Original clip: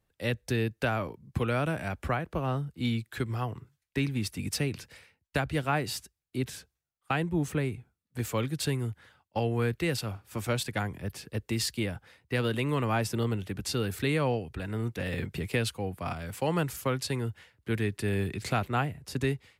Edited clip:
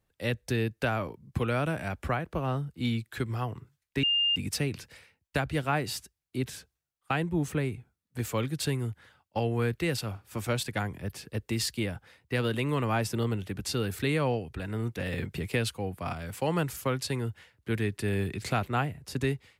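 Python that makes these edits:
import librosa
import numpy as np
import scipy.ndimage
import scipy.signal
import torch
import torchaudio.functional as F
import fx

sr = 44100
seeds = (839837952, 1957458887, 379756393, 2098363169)

y = fx.edit(x, sr, fx.bleep(start_s=4.03, length_s=0.33, hz=2810.0, db=-22.5), tone=tone)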